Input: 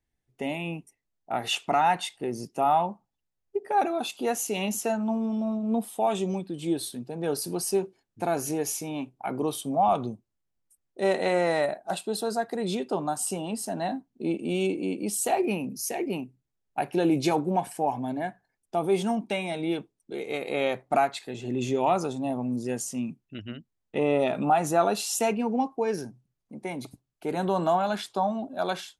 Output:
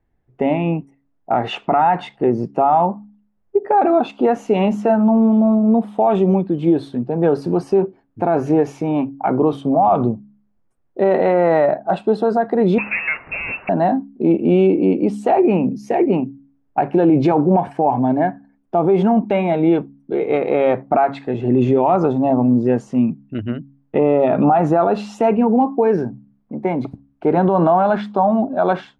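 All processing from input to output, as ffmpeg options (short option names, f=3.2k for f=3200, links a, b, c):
-filter_complex "[0:a]asettb=1/sr,asplit=3[a][b][c];[a]atrim=end=12.784[d];[b]atrim=start=12.78:end=13.69,asetpts=PTS-STARTPTS,afade=t=in:d=0.004:c=qsin,afade=t=out:st=0.906:d=0.004:c=qsin,aeval=exprs='val(0)+0.5*0.0224*sgn(val(0))':c=same,lowpass=f=2.5k:t=q:w=0.5098,lowpass=f=2.5k:t=q:w=0.6013,lowpass=f=2.5k:t=q:w=0.9,lowpass=f=2.5k:t=q:w=2.563,afreqshift=-2900[e];[c]atrim=start=13.686[f];[d][e]acrossfade=d=0.004:c1=hsin:c2=qsin[g];[g][f]acrossfade=d=0.004:c1=qsin:c2=hsin,lowpass=1.3k,bandreject=f=69.16:t=h:w=4,bandreject=f=138.32:t=h:w=4,bandreject=f=207.48:t=h:w=4,bandreject=f=276.64:t=h:w=4,alimiter=level_in=20.5dB:limit=-1dB:release=50:level=0:latency=1,volume=-5.5dB"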